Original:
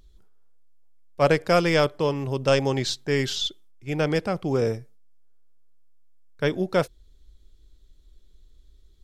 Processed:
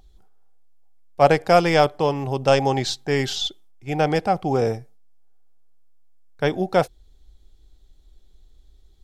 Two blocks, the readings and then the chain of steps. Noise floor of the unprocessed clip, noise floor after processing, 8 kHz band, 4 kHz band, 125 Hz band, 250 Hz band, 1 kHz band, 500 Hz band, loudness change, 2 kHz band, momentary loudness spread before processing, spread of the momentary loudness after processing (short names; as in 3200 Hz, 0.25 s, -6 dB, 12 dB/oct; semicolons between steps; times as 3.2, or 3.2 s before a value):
-55 dBFS, -53 dBFS, +1.5 dB, +1.5 dB, +1.5 dB, +1.5 dB, +8.5 dB, +3.0 dB, +3.0 dB, +1.5 dB, 9 LU, 12 LU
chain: bell 770 Hz +13.5 dB 0.31 oct; gain +1.5 dB